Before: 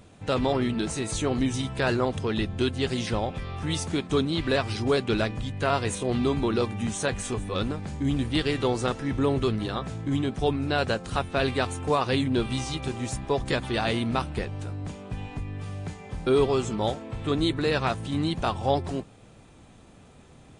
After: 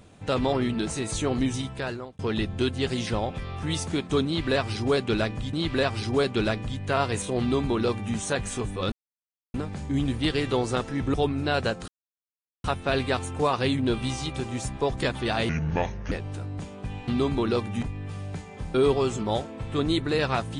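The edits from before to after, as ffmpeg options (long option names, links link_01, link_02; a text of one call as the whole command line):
ffmpeg -i in.wav -filter_complex "[0:a]asplit=10[link_01][link_02][link_03][link_04][link_05][link_06][link_07][link_08][link_09][link_10];[link_01]atrim=end=2.19,asetpts=PTS-STARTPTS,afade=type=out:start_time=1.49:duration=0.7[link_11];[link_02]atrim=start=2.19:end=5.532,asetpts=PTS-STARTPTS,afade=type=in:duration=0.004:curve=hsin[link_12];[link_03]atrim=start=4.258:end=7.65,asetpts=PTS-STARTPTS,afade=type=out:start_time=3.388:duration=0.004:curve=hsin,apad=pad_dur=0.62[link_13];[link_04]atrim=start=7.65:end=9.252,asetpts=PTS-STARTPTS,afade=type=in:duration=0.004:curve=hsin[link_14];[link_05]atrim=start=10.378:end=11.12,asetpts=PTS-STARTPTS,afade=type=out:start_time=0.738:duration=0.004:curve=hsin,apad=pad_dur=0.76[link_15];[link_06]atrim=start=11.12:end=13.974,asetpts=PTS-STARTPTS,afade=type=in:duration=0.004:curve=hsin[link_16];[link_07]atrim=start=13.97:end=14.39,asetpts=PTS-STARTPTS,asetrate=29547,aresample=44100[link_17];[link_08]atrim=start=14.386:end=15.352[link_18];[link_09]atrim=start=6.128:end=6.882[link_19];[link_10]atrim=start=15.348[link_20];[link_11][link_12]concat=n=2:v=0:a=1[link_21];[link_13][link_14]concat=n=2:v=0:a=1[link_22];[link_21][link_22]acrossfade=duration=0.004:curve1=hsin:curve2=hsin[link_23];[link_15][link_16]concat=n=2:v=0:a=1[link_24];[link_23][link_24]acrossfade=duration=0.004:curve1=hsin:curve2=hsin[link_25];[link_25][link_17]acrossfade=duration=0.004:curve1=hsin:curve2=hsin[link_26];[link_26][link_18]acrossfade=duration=0.004:curve1=hsin:curve2=hsin[link_27];[link_27][link_19]acrossfade=duration=0.004:curve1=hsin:curve2=hsin[link_28];[link_28][link_20]acrossfade=duration=0.004:curve1=hsin:curve2=hsin" out.wav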